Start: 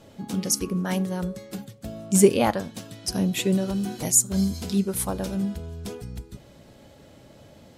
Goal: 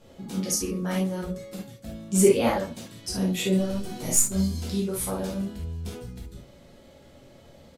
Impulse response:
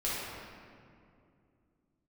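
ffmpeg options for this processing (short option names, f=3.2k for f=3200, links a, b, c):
-filter_complex "[0:a]asettb=1/sr,asplit=3[a][b][c];[a]atrim=end=3.584[d];[b]atrim=start=3.58:end=4.34,asetpts=PTS-STARTPTS,afade=t=in:d=0.004:c=qsin,afade=t=out:st=0.756:d=0.004:c=qsin,aeval=exprs='0.501*(cos(1*acos(clip(val(0)/0.501,-1,1)))-cos(1*PI/2))+0.0178*(cos(6*acos(clip(val(0)/0.501,-1,1)))-cos(6*PI/2))':c=same[e];[c]atrim=start=4.336[f];[d][e]acrossfade=d=0.004:c1=hsin:c2=qsin[g];[g][f]acrossfade=d=0.004:c1=qsin:c2=hsin,aecho=1:1:90:0.0944[h];[1:a]atrim=start_sample=2205,atrim=end_sample=3528[i];[h][i]afir=irnorm=-1:irlink=0,volume=-5dB"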